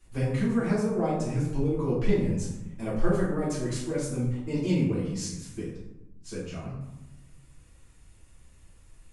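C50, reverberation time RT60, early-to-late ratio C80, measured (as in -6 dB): 2.5 dB, 1.0 s, 5.5 dB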